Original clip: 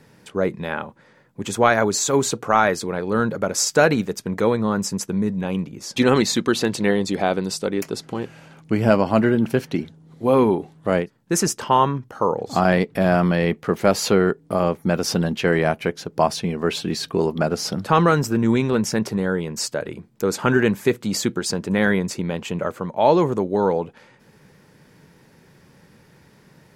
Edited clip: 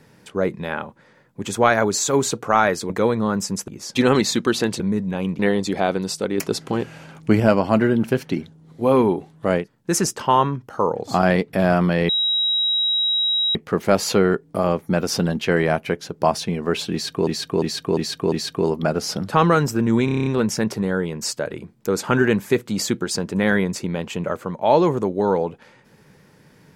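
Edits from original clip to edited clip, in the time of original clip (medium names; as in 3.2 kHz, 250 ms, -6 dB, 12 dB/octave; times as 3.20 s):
2.90–4.32 s: delete
5.10–5.69 s: move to 6.81 s
7.80–8.82 s: gain +4.5 dB
13.51 s: add tone 3.84 kHz -17 dBFS 1.46 s
16.88–17.23 s: loop, 5 plays
18.61 s: stutter 0.03 s, 8 plays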